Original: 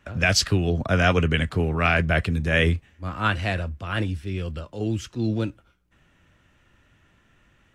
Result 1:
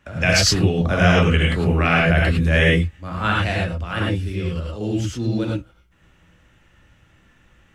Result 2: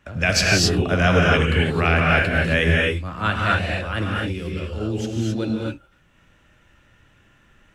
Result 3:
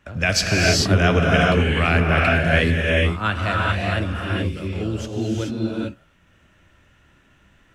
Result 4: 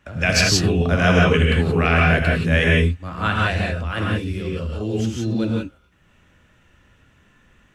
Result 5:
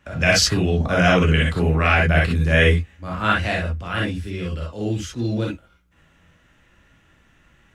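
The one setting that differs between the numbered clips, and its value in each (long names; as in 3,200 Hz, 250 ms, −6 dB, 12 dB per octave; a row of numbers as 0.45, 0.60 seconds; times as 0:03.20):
reverb whose tail is shaped and stops, gate: 130, 290, 460, 200, 80 milliseconds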